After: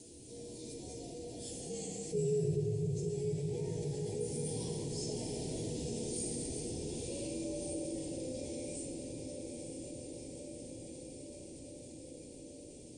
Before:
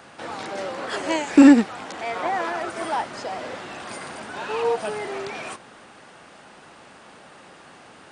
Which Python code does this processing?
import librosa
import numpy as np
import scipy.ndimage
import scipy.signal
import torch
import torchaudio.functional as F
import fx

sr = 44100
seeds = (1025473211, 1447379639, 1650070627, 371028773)

p1 = fx.doppler_pass(x, sr, speed_mps=8, closest_m=4.6, pass_at_s=3.51)
p2 = scipy.signal.sosfilt(scipy.signal.cheby1(2, 1.0, [170.0, 8100.0], 'bandstop', fs=sr, output='sos'), p1)
p3 = p2 * np.sin(2.0 * np.pi * 130.0 * np.arange(len(p2)) / sr)
p4 = fx.stretch_vocoder_free(p3, sr, factor=1.6)
p5 = fx.highpass(p4, sr, hz=96.0, slope=6)
p6 = fx.comb_fb(p5, sr, f0_hz=480.0, decay_s=0.26, harmonics='odd', damping=0.0, mix_pct=80)
p7 = p6 + fx.echo_diffused(p6, sr, ms=933, feedback_pct=58, wet_db=-9, dry=0)
p8 = fx.room_shoebox(p7, sr, seeds[0], volume_m3=180.0, walls='hard', distance_m=0.57)
p9 = fx.env_flatten(p8, sr, amount_pct=50)
y = p9 * 10.0 ** (15.0 / 20.0)